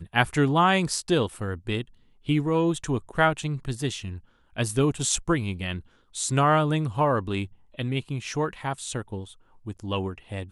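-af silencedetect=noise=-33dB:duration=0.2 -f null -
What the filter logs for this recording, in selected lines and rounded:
silence_start: 1.82
silence_end: 2.29 | silence_duration: 0.47
silence_start: 4.17
silence_end: 4.57 | silence_duration: 0.40
silence_start: 5.80
silence_end: 6.15 | silence_duration: 0.36
silence_start: 7.46
silence_end: 7.79 | silence_duration: 0.33
silence_start: 9.24
silence_end: 9.67 | silence_duration: 0.43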